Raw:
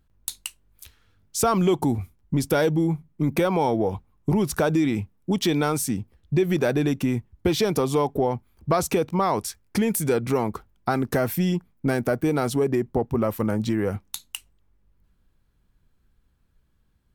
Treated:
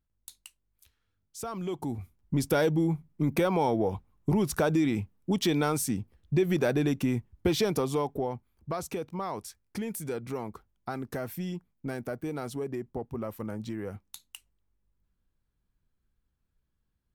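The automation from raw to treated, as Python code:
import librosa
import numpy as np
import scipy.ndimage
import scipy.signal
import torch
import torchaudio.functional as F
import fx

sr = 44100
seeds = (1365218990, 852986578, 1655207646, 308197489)

y = fx.gain(x, sr, db=fx.line((1.5, -16.0), (2.39, -4.0), (7.58, -4.0), (8.73, -12.0)))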